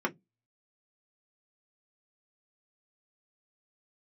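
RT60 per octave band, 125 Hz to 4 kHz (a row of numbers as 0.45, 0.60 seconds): 0.25, 0.25, 0.15, 0.10, 0.10, 0.10 seconds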